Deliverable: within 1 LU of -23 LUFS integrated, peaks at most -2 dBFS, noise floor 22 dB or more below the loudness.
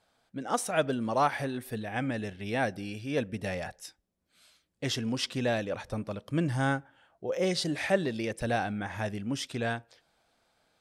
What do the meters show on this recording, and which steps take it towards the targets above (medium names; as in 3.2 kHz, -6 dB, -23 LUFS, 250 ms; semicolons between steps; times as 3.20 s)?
loudness -32.0 LUFS; peak level -13.0 dBFS; loudness target -23.0 LUFS
-> trim +9 dB